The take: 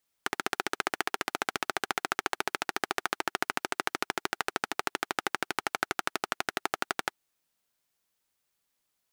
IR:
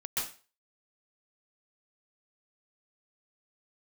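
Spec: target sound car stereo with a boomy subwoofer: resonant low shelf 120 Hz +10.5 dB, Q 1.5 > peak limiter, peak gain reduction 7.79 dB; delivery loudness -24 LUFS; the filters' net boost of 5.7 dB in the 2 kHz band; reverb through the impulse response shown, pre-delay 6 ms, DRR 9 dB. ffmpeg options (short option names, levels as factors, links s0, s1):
-filter_complex "[0:a]equalizer=f=2000:t=o:g=7.5,asplit=2[s0][s1];[1:a]atrim=start_sample=2205,adelay=6[s2];[s1][s2]afir=irnorm=-1:irlink=0,volume=0.211[s3];[s0][s3]amix=inputs=2:normalize=0,lowshelf=f=120:t=q:w=1.5:g=10.5,volume=3.16,alimiter=limit=0.794:level=0:latency=1"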